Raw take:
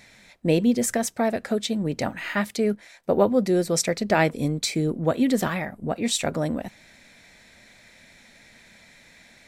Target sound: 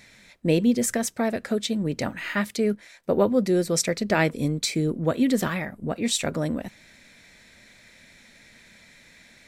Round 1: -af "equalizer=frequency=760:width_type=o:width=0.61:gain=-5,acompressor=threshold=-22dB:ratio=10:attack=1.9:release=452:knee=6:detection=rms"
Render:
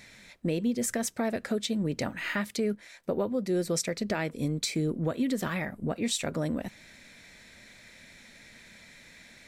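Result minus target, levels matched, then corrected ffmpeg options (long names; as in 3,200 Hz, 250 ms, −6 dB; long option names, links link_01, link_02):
downward compressor: peak gain reduction +11 dB
-af "equalizer=frequency=760:width_type=o:width=0.61:gain=-5"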